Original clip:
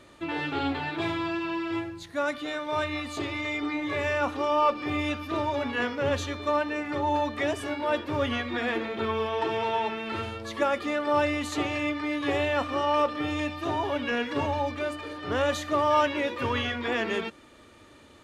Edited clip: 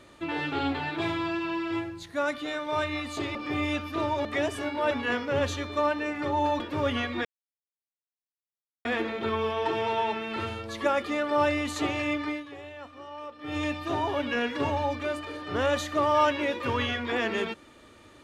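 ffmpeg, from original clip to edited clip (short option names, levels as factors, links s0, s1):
-filter_complex "[0:a]asplit=8[s0][s1][s2][s3][s4][s5][s6][s7];[s0]atrim=end=3.352[s8];[s1]atrim=start=4.708:end=5.612[s9];[s2]atrim=start=7.298:end=7.962[s10];[s3]atrim=start=5.608:end=7.302[s11];[s4]atrim=start=7.958:end=8.61,asetpts=PTS-STARTPTS,afade=t=out:st=0.648:d=0.004:c=hsin,apad=pad_dur=1.6[s12];[s5]atrim=start=8.61:end=12.29,asetpts=PTS-STARTPTS,afade=t=in:d=0.004:c=hsin,afade=t=out:st=3.44:d=0.24:c=qua:silence=0.149624[s13];[s6]atrim=start=12.29:end=13.09,asetpts=PTS-STARTPTS,volume=0.15[s14];[s7]atrim=start=13.09,asetpts=PTS-STARTPTS,afade=t=in:d=0.24:c=qua:silence=0.149624[s15];[s8][s9]acrossfade=d=0.004:c1=hsin:c2=hsin[s16];[s16][s10]acrossfade=d=0.004:c1=hsin:c2=hsin[s17];[s17][s11]acrossfade=d=0.004:c1=hsin:c2=hsin[s18];[s12][s13][s14][s15]concat=n=4:v=0:a=1[s19];[s18][s19]acrossfade=d=0.004:c1=hsin:c2=hsin"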